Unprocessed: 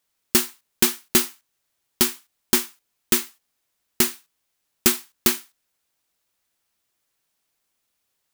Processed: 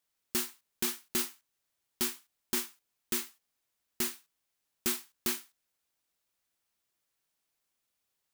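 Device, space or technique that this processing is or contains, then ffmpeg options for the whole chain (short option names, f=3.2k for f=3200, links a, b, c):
soft clipper into limiter: -af "asoftclip=type=tanh:threshold=-3dB,alimiter=limit=-12.5dB:level=0:latency=1:release=33,volume=-7dB"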